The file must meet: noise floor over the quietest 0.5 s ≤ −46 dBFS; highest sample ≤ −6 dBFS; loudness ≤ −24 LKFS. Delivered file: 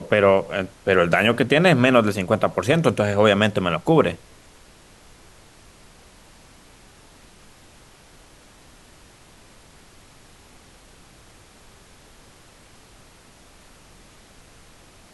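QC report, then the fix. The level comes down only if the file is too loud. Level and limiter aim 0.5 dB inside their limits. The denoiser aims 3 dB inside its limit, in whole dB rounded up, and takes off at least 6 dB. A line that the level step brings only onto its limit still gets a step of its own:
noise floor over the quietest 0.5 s −50 dBFS: in spec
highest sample −4.0 dBFS: out of spec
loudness −19.0 LKFS: out of spec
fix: level −5.5 dB

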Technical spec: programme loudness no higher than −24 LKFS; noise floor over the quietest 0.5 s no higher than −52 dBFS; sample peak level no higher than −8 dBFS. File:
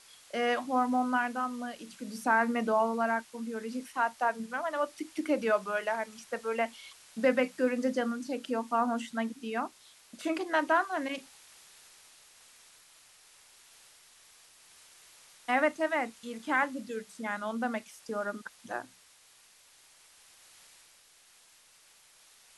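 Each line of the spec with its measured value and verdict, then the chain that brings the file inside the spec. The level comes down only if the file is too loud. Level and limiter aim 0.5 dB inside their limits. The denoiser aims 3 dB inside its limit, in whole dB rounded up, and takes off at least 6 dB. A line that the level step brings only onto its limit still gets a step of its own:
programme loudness −31.5 LKFS: in spec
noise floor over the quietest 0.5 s −61 dBFS: in spec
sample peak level −13.0 dBFS: in spec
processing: no processing needed

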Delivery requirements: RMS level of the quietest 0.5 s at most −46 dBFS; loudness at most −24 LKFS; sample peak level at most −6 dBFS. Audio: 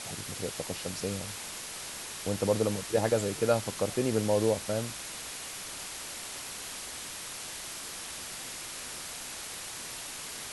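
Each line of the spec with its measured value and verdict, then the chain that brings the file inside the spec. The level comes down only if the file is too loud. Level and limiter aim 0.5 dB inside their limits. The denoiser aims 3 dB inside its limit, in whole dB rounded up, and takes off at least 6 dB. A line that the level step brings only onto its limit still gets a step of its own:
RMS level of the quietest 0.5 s −41 dBFS: out of spec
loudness −33.5 LKFS: in spec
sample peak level −12.5 dBFS: in spec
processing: broadband denoise 8 dB, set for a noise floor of −41 dBFS

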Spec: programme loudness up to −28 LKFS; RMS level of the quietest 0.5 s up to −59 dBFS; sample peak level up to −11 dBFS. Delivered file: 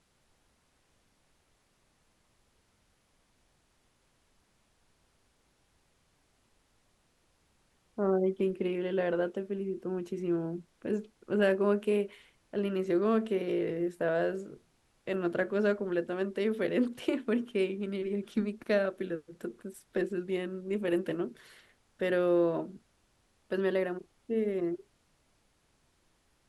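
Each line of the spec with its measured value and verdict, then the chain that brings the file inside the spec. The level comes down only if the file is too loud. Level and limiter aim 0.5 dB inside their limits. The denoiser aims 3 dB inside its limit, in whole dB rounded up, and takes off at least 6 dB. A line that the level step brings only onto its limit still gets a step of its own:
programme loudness −32.0 LKFS: in spec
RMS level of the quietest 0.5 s −71 dBFS: in spec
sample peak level −14.5 dBFS: in spec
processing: no processing needed

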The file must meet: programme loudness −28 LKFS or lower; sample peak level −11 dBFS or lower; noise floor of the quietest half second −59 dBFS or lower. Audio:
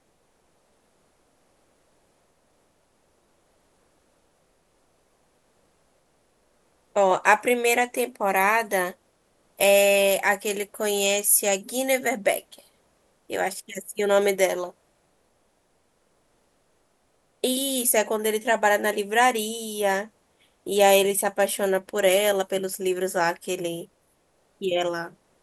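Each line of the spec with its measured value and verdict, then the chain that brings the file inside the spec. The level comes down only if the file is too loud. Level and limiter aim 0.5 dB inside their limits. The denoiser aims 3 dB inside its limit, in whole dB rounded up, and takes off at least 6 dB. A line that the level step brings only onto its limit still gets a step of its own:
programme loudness −23.0 LKFS: out of spec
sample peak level −5.0 dBFS: out of spec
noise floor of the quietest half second −67 dBFS: in spec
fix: level −5.5 dB
brickwall limiter −11.5 dBFS

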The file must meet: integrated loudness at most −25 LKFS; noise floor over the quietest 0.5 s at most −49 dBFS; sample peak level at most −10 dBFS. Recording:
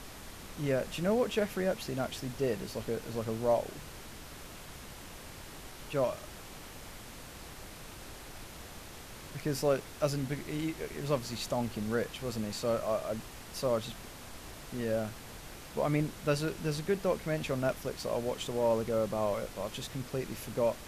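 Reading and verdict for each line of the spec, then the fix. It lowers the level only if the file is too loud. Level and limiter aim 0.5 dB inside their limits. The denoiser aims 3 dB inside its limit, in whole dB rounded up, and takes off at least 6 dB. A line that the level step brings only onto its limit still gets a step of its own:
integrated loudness −34.0 LKFS: in spec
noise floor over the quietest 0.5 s −47 dBFS: out of spec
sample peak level −16.5 dBFS: in spec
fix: broadband denoise 6 dB, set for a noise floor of −47 dBFS

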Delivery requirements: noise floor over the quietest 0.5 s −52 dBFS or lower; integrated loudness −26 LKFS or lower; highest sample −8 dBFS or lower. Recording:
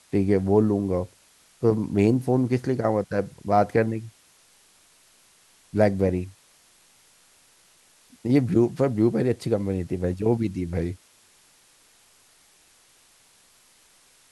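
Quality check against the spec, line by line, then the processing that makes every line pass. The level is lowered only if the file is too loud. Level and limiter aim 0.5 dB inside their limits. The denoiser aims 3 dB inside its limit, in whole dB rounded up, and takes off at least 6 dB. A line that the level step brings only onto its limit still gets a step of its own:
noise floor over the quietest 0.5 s −58 dBFS: in spec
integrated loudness −24.0 LKFS: out of spec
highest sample −5.5 dBFS: out of spec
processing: level −2.5 dB
brickwall limiter −8.5 dBFS

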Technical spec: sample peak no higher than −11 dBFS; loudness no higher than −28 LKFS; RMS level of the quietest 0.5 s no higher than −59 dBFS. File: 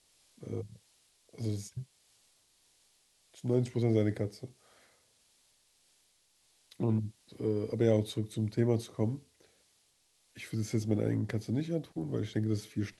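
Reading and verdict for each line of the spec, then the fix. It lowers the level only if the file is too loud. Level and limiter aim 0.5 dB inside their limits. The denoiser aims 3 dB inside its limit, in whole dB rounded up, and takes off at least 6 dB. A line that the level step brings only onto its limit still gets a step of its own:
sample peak −14.5 dBFS: in spec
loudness −33.5 LKFS: in spec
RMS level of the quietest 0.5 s −71 dBFS: in spec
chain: no processing needed

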